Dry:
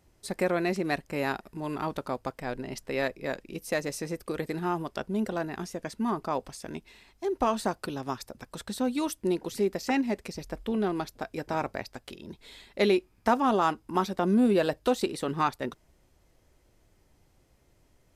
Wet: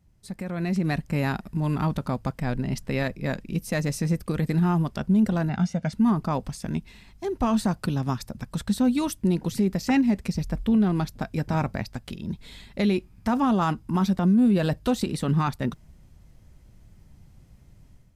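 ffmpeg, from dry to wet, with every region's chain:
ffmpeg -i in.wav -filter_complex "[0:a]asettb=1/sr,asplit=3[link_01][link_02][link_03];[link_01]atrim=end=5.494[link_04];[link_02]atrim=start=5.49:end=5.93,asetpts=PTS-STARTPTS,afade=type=in:duration=0.004:curve=qsin,afade=type=out:start_time=0.436:duration=0.004:curve=qsin,highpass=110,lowpass=5400,aecho=1:1:1.4:0.69,atrim=end_sample=19404[link_05];[link_03]atrim=start=5.926[link_06];[link_04][link_05]acrossfade=duration=0.004:curve1=hsin:curve2=qsin[link_07];[link_07][link_06]acrossfade=duration=0.004:curve1=qsin:curve2=hsin,lowshelf=frequency=260:width_type=q:width=1.5:gain=10.5,alimiter=limit=-17dB:level=0:latency=1:release=37,dynaudnorm=framelen=460:gausssize=3:maxgain=10.5dB,volume=-7.5dB" out.wav

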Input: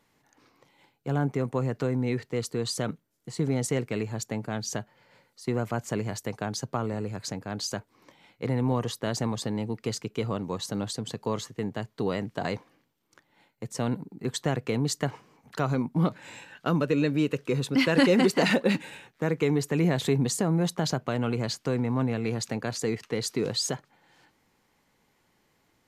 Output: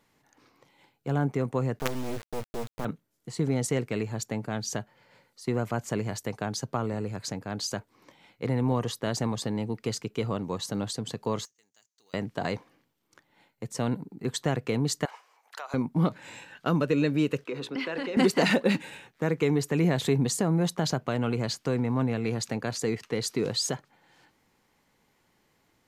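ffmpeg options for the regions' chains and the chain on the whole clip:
ffmpeg -i in.wav -filter_complex "[0:a]asettb=1/sr,asplit=3[link_01][link_02][link_03];[link_01]atrim=end=1.794[link_04];[link_02]atrim=start=1.79:end=2.85,asetpts=PTS-STARTPTS,afade=type=in:duration=0.004:curve=qsin,afade=type=out:start_time=1.056:duration=0.004:curve=qsin,aeval=exprs='val(0)+0.5*0.00631*sgn(val(0))':channel_layout=same,lowpass=1300,acrusher=bits=4:dc=4:mix=0:aa=0.000001[link_05];[link_03]atrim=start=2.846[link_06];[link_04][link_05]acrossfade=duration=0.004:curve1=hsin:curve2=qsin[link_07];[link_07][link_06]acrossfade=duration=0.004:curve1=qsin:curve2=hsin,asettb=1/sr,asplit=3[link_08][link_09][link_10];[link_08]atrim=end=11.454[link_11];[link_09]atrim=start=11.45:end=12.14,asetpts=PTS-STARTPTS,afade=type=in:duration=0.004:curve=qsin,afade=type=out:start_time=0.686:duration=0.004:curve=qsin,bandpass=frequency=6400:width_type=q:width=5.9,acrusher=bits=3:mode=log:mix=0:aa=0.000001[link_12];[link_10]atrim=start=12.136[link_13];[link_11][link_12]acrossfade=duration=0.004:curve1=hsin:curve2=qsin[link_14];[link_14][link_13]acrossfade=duration=0.004:curve1=qsin:curve2=hsin,asettb=1/sr,asplit=3[link_15][link_16][link_17];[link_15]atrim=end=15.054[link_18];[link_16]atrim=start=15.05:end=15.74,asetpts=PTS-STARTPTS,afade=type=in:duration=0.004:curve=qsin,afade=type=out:start_time=0.686:duration=0.004:curve=qsin,highpass=frequency=640:width=0.5412,highpass=frequency=640:width=1.3066,acompressor=threshold=-34dB:ratio=5:attack=3.2:release=140:knee=1:detection=peak[link_19];[link_17]atrim=start=15.736[link_20];[link_18][link_19]acrossfade=duration=0.004:curve1=hsin:curve2=qsin[link_21];[link_21][link_20]acrossfade=duration=0.004:curve1=qsin:curve2=hsin,asettb=1/sr,asplit=3[link_22][link_23][link_24];[link_22]atrim=end=17.444[link_25];[link_23]atrim=start=17.44:end=18.17,asetpts=PTS-STARTPTS,afade=type=in:duration=0.004:curve=qsin,afade=type=out:start_time=0.726:duration=0.004:curve=qsin,acrossover=split=240 4600:gain=0.141 1 0.224[link_26][link_27][link_28];[link_26][link_27][link_28]amix=inputs=3:normalize=0,acompressor=threshold=-28dB:ratio=6:attack=3.2:release=140:knee=1:detection=peak,bandreject=frequency=60:width_type=h:width=6,bandreject=frequency=120:width_type=h:width=6,bandreject=frequency=180:width_type=h:width=6,bandreject=frequency=240:width_type=h:width=6,bandreject=frequency=300:width_type=h:width=6,bandreject=frequency=360:width_type=h:width=6,bandreject=frequency=420:width_type=h:width=6,bandreject=frequency=480:width_type=h:width=6,bandreject=frequency=540:width_type=h:width=6[link_29];[link_24]atrim=start=18.166[link_30];[link_25][link_29]acrossfade=duration=0.004:curve1=hsin:curve2=qsin[link_31];[link_31][link_30]acrossfade=duration=0.004:curve1=qsin:curve2=hsin" out.wav

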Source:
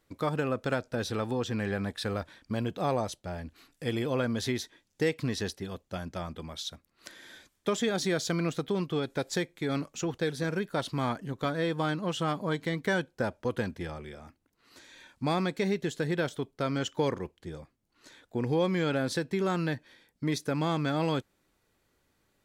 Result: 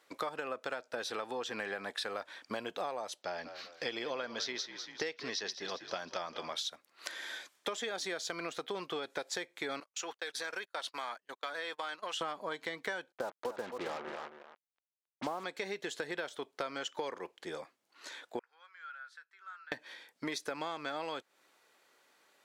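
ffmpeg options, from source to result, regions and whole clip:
ffmpeg -i in.wav -filter_complex "[0:a]asettb=1/sr,asplit=3[link_01][link_02][link_03];[link_01]atrim=end=3.224[link_04];[link_02]atrim=start=3.22:end=6.56,asetpts=PTS-STARTPTS,afade=type=in:duration=0.004:curve=qsin,afade=type=out:start_time=3.336:duration=0.004:curve=qsin,highshelf=frequency=7100:width_type=q:width=3:gain=-10,asplit=5[link_05][link_06][link_07][link_08][link_09];[link_06]adelay=196,afreqshift=-48,volume=-15dB[link_10];[link_07]adelay=392,afreqshift=-96,volume=-22.3dB[link_11];[link_08]adelay=588,afreqshift=-144,volume=-29.7dB[link_12];[link_09]adelay=784,afreqshift=-192,volume=-37dB[link_13];[link_05][link_10][link_11][link_12][link_13]amix=inputs=5:normalize=0,atrim=end_sample=147294[link_14];[link_03]atrim=start=6.556[link_15];[link_04][link_14]acrossfade=duration=0.004:curve1=hsin:curve2=qsin[link_16];[link_16][link_15]acrossfade=duration=0.004:curve1=qsin:curve2=hsin,asettb=1/sr,asplit=3[link_17][link_18][link_19];[link_17]atrim=end=9.804[link_20];[link_18]atrim=start=9.8:end=12.21,asetpts=PTS-STARTPTS,afade=type=in:duration=0.004:curve=qsin,afade=type=out:start_time=2.406:duration=0.004:curve=qsin,highpass=frequency=1100:poles=1,acompressor=threshold=-40dB:ratio=3:attack=3.2:release=140:knee=1:detection=peak,agate=range=-33dB:threshold=-48dB:ratio=16:release=100:detection=peak[link_21];[link_19]atrim=start=12.206[link_22];[link_20][link_21]acrossfade=duration=0.004:curve1=hsin:curve2=qsin[link_23];[link_23][link_22]acrossfade=duration=0.004:curve1=qsin:curve2=hsin,asettb=1/sr,asplit=3[link_24][link_25][link_26];[link_24]atrim=end=13.124[link_27];[link_25]atrim=start=13.12:end=15.44,asetpts=PTS-STARTPTS,afade=type=in:duration=0.004:curve=qsin,afade=type=out:start_time=2.316:duration=0.004:curve=qsin,lowpass=frequency=1300:width=0.5412,lowpass=frequency=1300:width=1.3066,acrusher=bits=6:mix=0:aa=0.5,aecho=1:1:270:0.266,atrim=end_sample=102312[link_28];[link_26]atrim=start=15.436[link_29];[link_27][link_28]acrossfade=duration=0.004:curve1=hsin:curve2=qsin[link_30];[link_30][link_29]acrossfade=duration=0.004:curve1=qsin:curve2=hsin,asettb=1/sr,asplit=3[link_31][link_32][link_33];[link_31]atrim=end=18.394[link_34];[link_32]atrim=start=18.39:end=19.72,asetpts=PTS-STARTPTS,afade=type=in:duration=0.004:curve=qsin,afade=type=out:start_time=1.326:duration=0.004:curve=qsin,bandpass=frequency=1400:width_type=q:width=9.2,aderivative,asplit=2[link_35][link_36];[link_36]adelay=15,volume=-13.5dB[link_37];[link_35][link_37]amix=inputs=2:normalize=0,atrim=end_sample=58653[link_38];[link_33]atrim=start=19.716[link_39];[link_34][link_38]acrossfade=duration=0.004:curve1=hsin:curve2=qsin[link_40];[link_40][link_39]acrossfade=duration=0.004:curve1=qsin:curve2=hsin,highpass=580,highshelf=frequency=9200:gain=-8.5,acompressor=threshold=-43dB:ratio=10,volume=8.5dB" out.wav

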